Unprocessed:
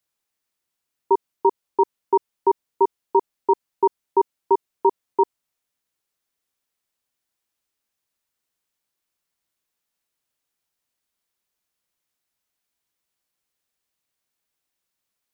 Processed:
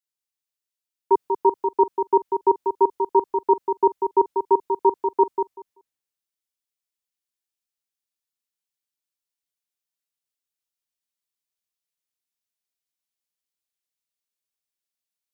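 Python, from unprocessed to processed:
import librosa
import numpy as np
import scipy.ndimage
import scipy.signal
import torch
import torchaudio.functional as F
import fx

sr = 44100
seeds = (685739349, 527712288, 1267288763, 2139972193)

y = fx.echo_feedback(x, sr, ms=192, feedback_pct=20, wet_db=-5.0)
y = fx.band_widen(y, sr, depth_pct=40)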